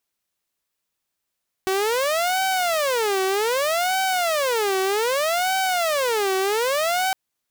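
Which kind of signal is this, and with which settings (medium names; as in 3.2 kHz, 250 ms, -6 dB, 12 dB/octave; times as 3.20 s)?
siren wail 379–764 Hz 0.64 per s saw -17 dBFS 5.46 s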